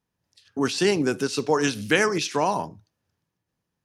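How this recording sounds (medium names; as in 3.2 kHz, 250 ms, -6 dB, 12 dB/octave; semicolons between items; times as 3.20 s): noise floor -82 dBFS; spectral tilt -4.0 dB/octave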